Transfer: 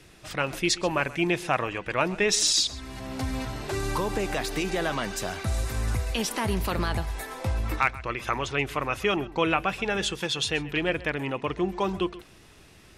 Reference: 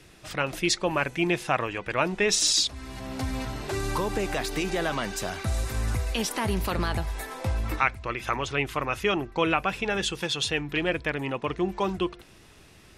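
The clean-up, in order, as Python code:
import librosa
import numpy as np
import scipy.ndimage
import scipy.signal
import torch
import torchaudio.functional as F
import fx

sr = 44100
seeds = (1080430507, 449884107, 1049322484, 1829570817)

y = fx.fix_declip(x, sr, threshold_db=-9.5)
y = fx.fix_echo_inverse(y, sr, delay_ms=130, level_db=-19.0)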